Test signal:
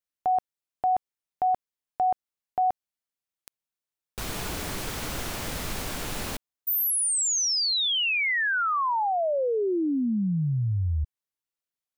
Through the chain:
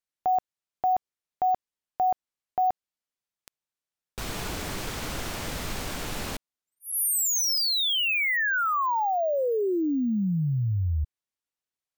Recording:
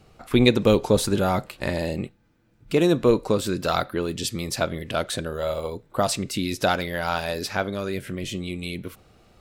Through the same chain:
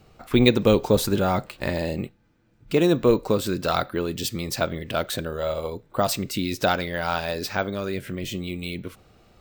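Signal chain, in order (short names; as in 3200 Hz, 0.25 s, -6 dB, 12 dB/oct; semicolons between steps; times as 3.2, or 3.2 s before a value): careless resampling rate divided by 2×, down filtered, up hold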